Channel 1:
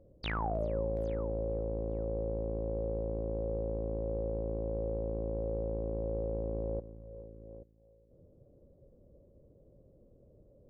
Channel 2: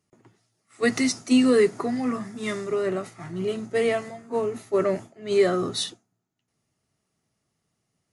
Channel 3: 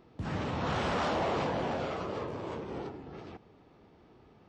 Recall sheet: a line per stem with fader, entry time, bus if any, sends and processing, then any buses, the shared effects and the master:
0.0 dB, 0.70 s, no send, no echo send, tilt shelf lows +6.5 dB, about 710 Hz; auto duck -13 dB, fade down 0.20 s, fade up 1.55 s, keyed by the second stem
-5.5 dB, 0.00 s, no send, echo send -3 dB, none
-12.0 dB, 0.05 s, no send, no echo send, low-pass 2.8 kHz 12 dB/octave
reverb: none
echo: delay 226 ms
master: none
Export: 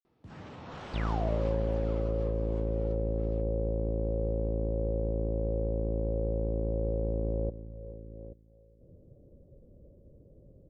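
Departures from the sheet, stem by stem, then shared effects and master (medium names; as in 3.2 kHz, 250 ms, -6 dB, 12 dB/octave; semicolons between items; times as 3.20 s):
stem 2: muted; stem 3: missing low-pass 2.8 kHz 12 dB/octave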